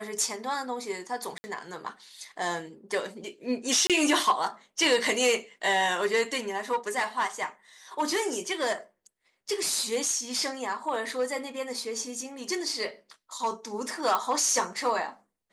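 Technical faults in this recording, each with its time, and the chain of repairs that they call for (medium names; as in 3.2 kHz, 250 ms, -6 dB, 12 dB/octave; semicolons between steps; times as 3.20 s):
1.38–1.44 s: dropout 60 ms
3.87–3.90 s: dropout 27 ms
14.15 s: pop -12 dBFS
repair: de-click; interpolate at 1.38 s, 60 ms; interpolate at 3.87 s, 27 ms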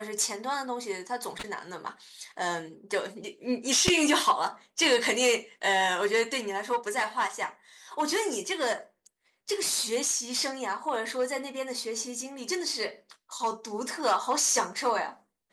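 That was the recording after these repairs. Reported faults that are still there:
14.15 s: pop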